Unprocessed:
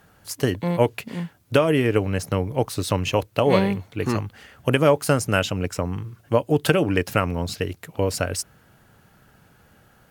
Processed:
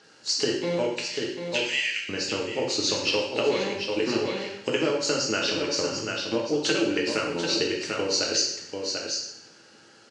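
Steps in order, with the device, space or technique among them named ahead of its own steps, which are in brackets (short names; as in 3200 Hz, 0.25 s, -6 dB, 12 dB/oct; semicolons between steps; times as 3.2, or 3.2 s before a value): 1.05–2.09 steep high-pass 1800 Hz 48 dB/oct; resonant high shelf 4300 Hz +7.5 dB, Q 1.5; echo 0.741 s -10 dB; hearing aid with frequency lowering (nonlinear frequency compression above 3600 Hz 1.5:1; compressor 4:1, threshold -24 dBFS, peak gain reduction 11 dB; speaker cabinet 290–6100 Hz, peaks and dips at 340 Hz +6 dB, 700 Hz -8 dB, 1100 Hz -5 dB, 2800 Hz +7 dB, 4300 Hz +6 dB); two-slope reverb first 0.74 s, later 2.2 s, from -25 dB, DRR -1.5 dB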